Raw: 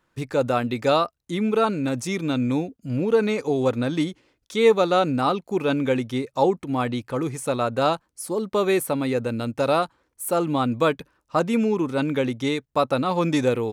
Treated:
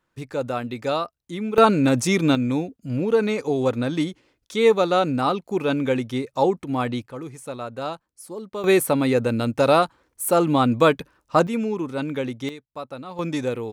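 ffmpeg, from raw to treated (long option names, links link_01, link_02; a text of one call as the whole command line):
ffmpeg -i in.wav -af "asetnsamples=nb_out_samples=441:pad=0,asendcmd='1.58 volume volume 6.5dB;2.35 volume volume 0dB;7.06 volume volume -8.5dB;8.64 volume volume 4dB;11.47 volume volume -3.5dB;12.49 volume volume -13dB;13.19 volume volume -4.5dB',volume=-4.5dB" out.wav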